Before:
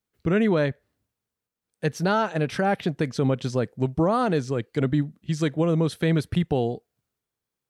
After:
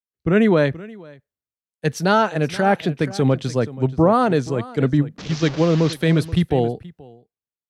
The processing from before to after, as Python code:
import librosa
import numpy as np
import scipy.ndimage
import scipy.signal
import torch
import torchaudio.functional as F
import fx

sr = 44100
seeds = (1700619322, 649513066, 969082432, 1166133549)

y = fx.delta_mod(x, sr, bps=32000, step_db=-28.5, at=(5.18, 5.93))
y = y + 10.0 ** (-14.5 / 20.0) * np.pad(y, (int(479 * sr / 1000.0), 0))[:len(y)]
y = fx.band_widen(y, sr, depth_pct=70)
y = F.gain(torch.from_numpy(y), 5.0).numpy()